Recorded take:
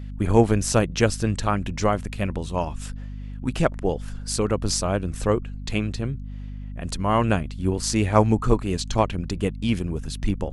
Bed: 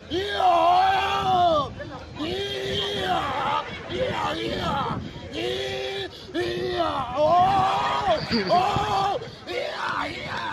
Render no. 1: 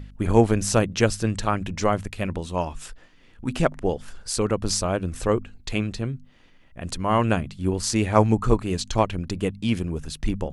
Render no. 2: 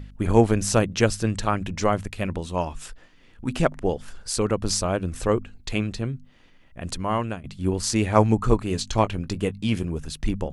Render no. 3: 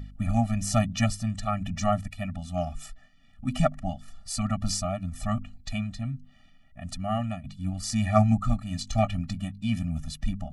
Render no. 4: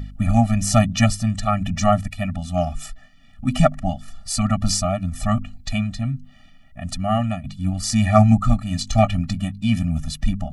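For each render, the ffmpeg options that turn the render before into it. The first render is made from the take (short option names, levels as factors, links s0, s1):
-af "bandreject=f=50:t=h:w=4,bandreject=f=100:t=h:w=4,bandreject=f=150:t=h:w=4,bandreject=f=200:t=h:w=4,bandreject=f=250:t=h:w=4"
-filter_complex "[0:a]asettb=1/sr,asplit=3[s0][s1][s2];[s0]atrim=end=8.674[s3];[s1]atrim=start=8.67:end=9.87,asetpts=PTS-STARTPTS,afade=t=in:d=0.004:c=qsin,afade=t=out:st=1.196:d=0.004:c=qsin,asplit=2[s4][s5];[s5]adelay=19,volume=0.237[s6];[s4][s6]amix=inputs=2:normalize=0,atrim=end_sample=52920[s7];[s2]atrim=start=9.866[s8];[s3][s7]acrossfade=d=0.004:c1=hsin:c2=qsin[s9];[s9][s8]acrossfade=d=0.004:c1=qsin:c2=hsin,asplit=2[s10][s11];[s10]atrim=end=7.44,asetpts=PTS-STARTPTS,afade=t=out:st=6.94:d=0.5:silence=0.133352[s12];[s11]atrim=start=7.44,asetpts=PTS-STARTPTS,afade=t=in:d=0.004:c=hsin:silence=0.133352[s13];[s12][s13]concat=n=2:v=0:a=1"
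-af "tremolo=f=1.1:d=0.4,afftfilt=real='re*eq(mod(floor(b*sr/1024/280),2),0)':imag='im*eq(mod(floor(b*sr/1024/280),2),0)':win_size=1024:overlap=0.75"
-af "volume=2.51,alimiter=limit=0.891:level=0:latency=1"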